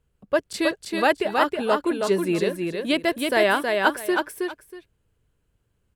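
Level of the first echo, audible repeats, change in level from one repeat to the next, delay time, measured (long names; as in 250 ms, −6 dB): −4.0 dB, 2, −13.5 dB, 320 ms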